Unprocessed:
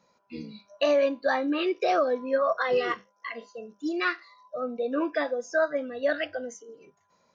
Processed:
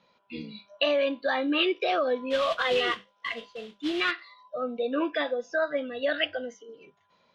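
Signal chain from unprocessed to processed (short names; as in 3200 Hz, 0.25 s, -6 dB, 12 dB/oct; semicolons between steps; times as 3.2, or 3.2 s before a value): limiter -19 dBFS, peak gain reduction 4.5 dB; 2.3–4.11 modulation noise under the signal 11 dB; synth low-pass 3300 Hz, resonance Q 3.9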